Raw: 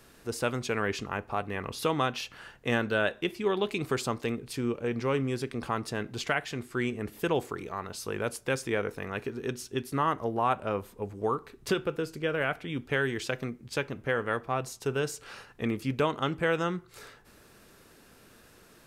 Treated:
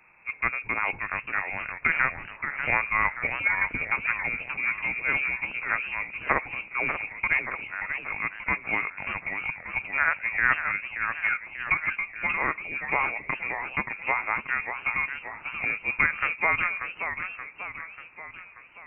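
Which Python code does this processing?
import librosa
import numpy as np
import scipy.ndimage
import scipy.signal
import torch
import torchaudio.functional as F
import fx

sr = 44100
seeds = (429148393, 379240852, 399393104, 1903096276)

y = fx.cheby_harmonics(x, sr, harmonics=(3,), levels_db=(-13,), full_scale_db=-12.5)
y = fx.freq_invert(y, sr, carrier_hz=2600)
y = fx.echo_warbled(y, sr, ms=584, feedback_pct=54, rate_hz=2.8, cents=214, wet_db=-8.0)
y = y * librosa.db_to_amplitude(9.0)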